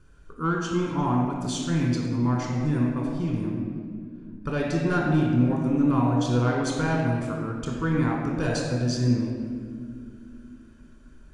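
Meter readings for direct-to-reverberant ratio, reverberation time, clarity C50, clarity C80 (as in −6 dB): −3.5 dB, 2.2 s, 0.0 dB, 2.0 dB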